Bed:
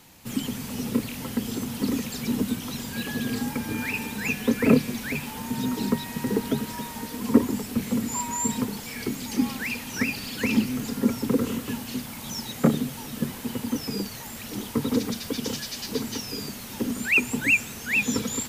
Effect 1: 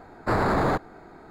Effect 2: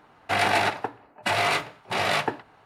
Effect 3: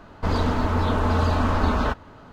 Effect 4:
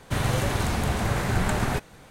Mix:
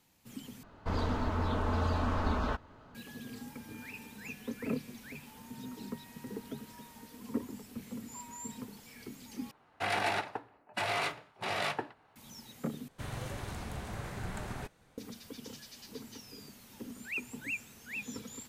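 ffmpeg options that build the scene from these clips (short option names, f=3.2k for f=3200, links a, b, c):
-filter_complex "[0:a]volume=-17dB,asplit=4[a][b][c][d];[a]atrim=end=0.634[e];[3:a]atrim=end=2.32,asetpts=PTS-STARTPTS,volume=-10dB[f];[b]atrim=start=2.946:end=9.514[g];[2:a]atrim=end=2.65,asetpts=PTS-STARTPTS,volume=-9.5dB[h];[c]atrim=start=12.156:end=12.884[i];[4:a]atrim=end=2.1,asetpts=PTS-STARTPTS,volume=-15.5dB[j];[d]atrim=start=14.976[k];[e][f]acrossfade=d=0.004:c1=hsin:c2=hsin[l];[l][g]acrossfade=d=0.004:c1=hsin:c2=hsin[m];[m][h]acrossfade=d=0.004:c1=hsin:c2=hsin[n];[n][i]acrossfade=d=0.004:c1=hsin:c2=hsin[o];[o][j]acrossfade=d=0.004:c1=hsin:c2=hsin[p];[p][k]acrossfade=d=0.004:c1=hsin:c2=hsin"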